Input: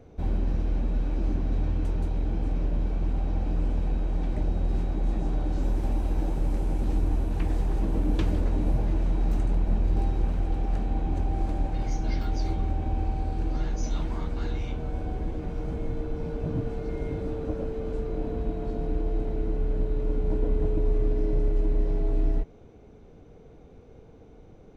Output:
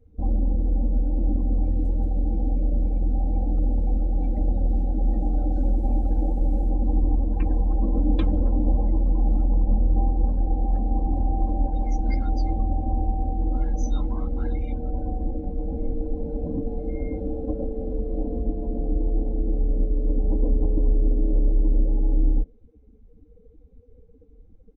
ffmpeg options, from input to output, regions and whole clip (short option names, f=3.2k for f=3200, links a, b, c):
-filter_complex "[0:a]asettb=1/sr,asplit=3[a][b][c];[a]atrim=end=1.654[d];[b]atrim=start=1.65:end=6.7,asetpts=PTS-STARTPTS,afade=t=in:d=0.004:c=qsin,afade=t=out:st=5.046:d=0.004:c=qsin,highshelf=f=4.6k:g=11,bandreject=f=1k:w=7.7[e];[c]atrim=start=6.696[f];[d][e]acrossfade=d=0.004:c1=hsin:c2=qsin[g];[g][f]acrossfade=d=0.004:c1=qsin:c2=hsin,afftdn=nr=24:nf=-39,aecho=1:1:3.8:0.92"